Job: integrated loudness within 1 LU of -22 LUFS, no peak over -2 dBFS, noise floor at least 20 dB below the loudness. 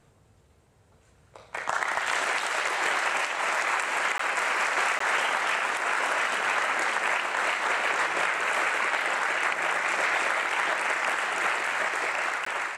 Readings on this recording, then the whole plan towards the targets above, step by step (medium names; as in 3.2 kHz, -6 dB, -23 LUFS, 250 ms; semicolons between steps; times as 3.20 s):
dropouts 3; longest dropout 14 ms; loudness -25.5 LUFS; peak level -11.5 dBFS; loudness target -22.0 LUFS
-> interpolate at 4.18/4.99/12.45 s, 14 ms; trim +3.5 dB